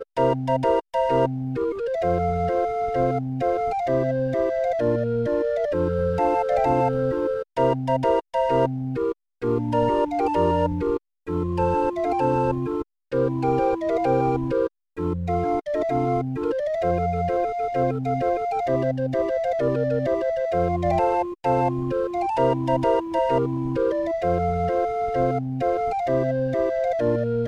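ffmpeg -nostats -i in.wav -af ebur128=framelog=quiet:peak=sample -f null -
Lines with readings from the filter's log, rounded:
Integrated loudness:
  I:         -23.4 LUFS
  Threshold: -33.4 LUFS
Loudness range:
  LRA:         1.5 LU
  Threshold: -43.4 LUFS
  LRA low:   -24.1 LUFS
  LRA high:  -22.6 LUFS
Sample peak:
  Peak:       -7.9 dBFS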